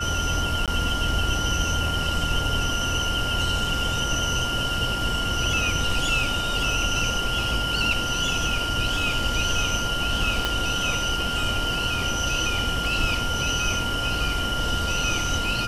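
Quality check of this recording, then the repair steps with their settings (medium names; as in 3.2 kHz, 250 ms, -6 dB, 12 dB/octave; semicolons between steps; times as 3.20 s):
whine 1.4 kHz -28 dBFS
0.66–0.68 s: dropout 17 ms
10.45 s: pop -9 dBFS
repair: de-click; band-stop 1.4 kHz, Q 30; interpolate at 0.66 s, 17 ms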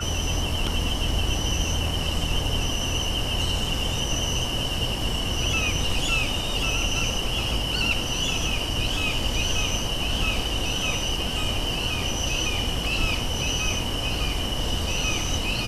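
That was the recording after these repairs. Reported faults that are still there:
10.45 s: pop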